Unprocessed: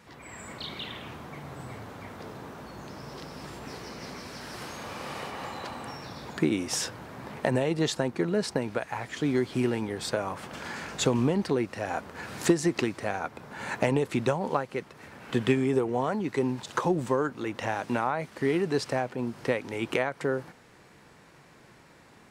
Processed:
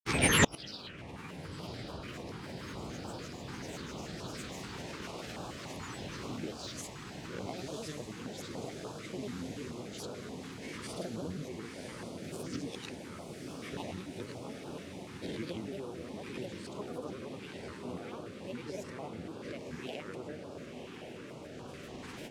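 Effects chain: spectral swells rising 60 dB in 0.40 s; recorder AGC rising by 14 dB/s; LPF 11000 Hz 12 dB/oct; grains, pitch spread up and down by 7 st; on a send: diffused feedback echo 1.052 s, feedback 75%, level -5 dB; on the sum: flipped gate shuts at -25 dBFS, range -32 dB; stepped notch 6.9 Hz 610–2000 Hz; gain +16.5 dB

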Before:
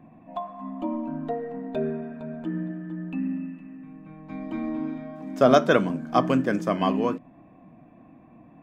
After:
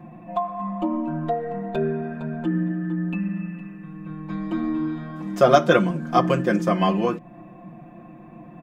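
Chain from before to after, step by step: comb 5.7 ms, depth 97%; in parallel at +2 dB: compressor, threshold -31 dBFS, peak gain reduction 20.5 dB; on the sum: gain -1.5 dB

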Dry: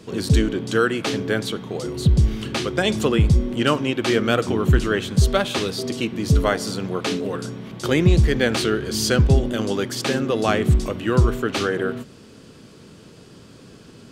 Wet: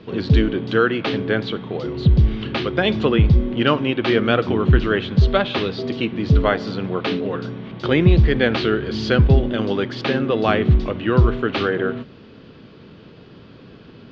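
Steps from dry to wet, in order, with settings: inverse Chebyshev low-pass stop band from 8900 Hz, stop band 50 dB; gain +2 dB

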